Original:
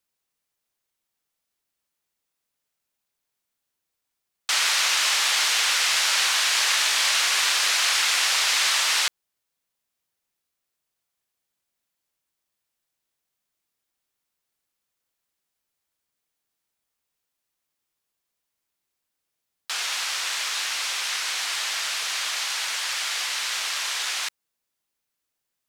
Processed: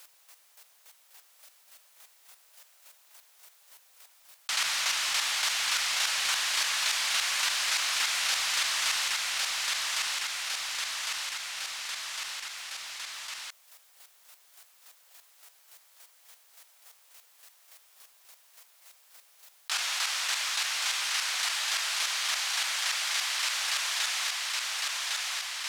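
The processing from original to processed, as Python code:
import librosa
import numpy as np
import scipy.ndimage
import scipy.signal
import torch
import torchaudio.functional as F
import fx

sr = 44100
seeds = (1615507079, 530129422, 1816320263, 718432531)

y = scipy.signal.sosfilt(scipy.signal.butter(4, 550.0, 'highpass', fs=sr, output='sos'), x)
y = fx.leveller(y, sr, passes=1)
y = fx.chopper(y, sr, hz=3.5, depth_pct=65, duty_pct=20)
y = fx.echo_feedback(y, sr, ms=1106, feedback_pct=32, wet_db=-7)
y = fx.env_flatten(y, sr, amount_pct=70)
y = y * librosa.db_to_amplitude(-9.0)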